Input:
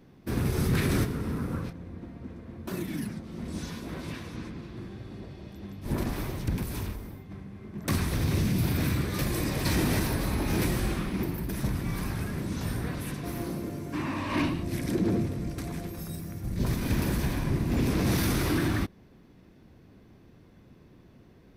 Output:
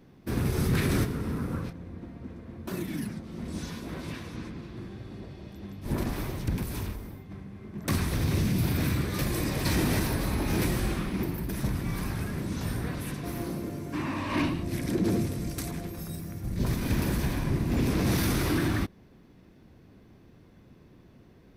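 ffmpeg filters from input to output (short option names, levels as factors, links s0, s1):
-filter_complex "[0:a]asettb=1/sr,asplit=3[s0][s1][s2];[s0]atrim=end=15.044[s3];[s1]atrim=start=15.04:end=15.71,asetpts=PTS-STARTPTS,afade=t=in:d=0.004:c=qsin,afade=t=out:st=0.666:d=0.004:c=qsin,highshelf=f=4000:g=11[s4];[s2]atrim=start=15.706[s5];[s3][s4]acrossfade=d=0.004:c1=hsin:c2=qsin[s6];[s6][s5]acrossfade=d=0.004:c1=qsin:c2=hsin"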